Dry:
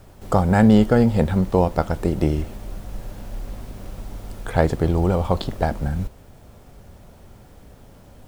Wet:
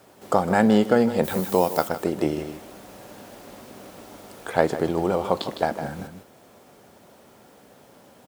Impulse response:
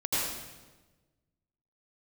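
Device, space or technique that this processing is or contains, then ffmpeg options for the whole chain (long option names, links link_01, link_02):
ducked delay: -filter_complex "[0:a]highpass=260,asplit=3[link_01][link_02][link_03];[link_01]afade=type=out:start_time=1.23:duration=0.02[link_04];[link_02]aemphasis=mode=production:type=75fm,afade=type=in:start_time=1.23:duration=0.02,afade=type=out:start_time=1.87:duration=0.02[link_05];[link_03]afade=type=in:start_time=1.87:duration=0.02[link_06];[link_04][link_05][link_06]amix=inputs=3:normalize=0,asplit=3[link_07][link_08][link_09];[link_08]adelay=157,volume=-7.5dB[link_10];[link_09]apad=whole_len=371656[link_11];[link_10][link_11]sidechaincompress=threshold=-22dB:ratio=8:attack=16:release=372[link_12];[link_07][link_12]amix=inputs=2:normalize=0"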